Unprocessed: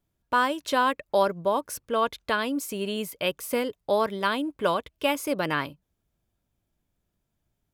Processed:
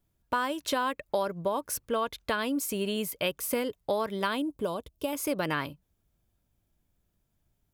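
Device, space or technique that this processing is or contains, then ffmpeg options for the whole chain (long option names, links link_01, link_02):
ASMR close-microphone chain: -filter_complex "[0:a]lowshelf=frequency=110:gain=5,acompressor=threshold=-25dB:ratio=6,highshelf=frequency=10000:gain=5.5,asettb=1/sr,asplit=3[link_01][link_02][link_03];[link_01]atrim=end=4.424[link_04];[link_02]atrim=start=4.42:end=5.13,asetpts=PTS-STARTPTS,afade=type=in:duration=0.004:curve=qsin,afade=type=out:start_time=0.706:duration=0.004:curve=qsin,equalizer=frequency=1900:width_type=o:width=1.5:gain=-14.5[link_05];[link_03]atrim=start=5.126[link_06];[link_04][link_05]acrossfade=duration=0.004:curve1=hsin:curve2=qsin[link_07];[link_07][link_06]acrossfade=duration=0.004:curve1=qsin:curve2=hsin"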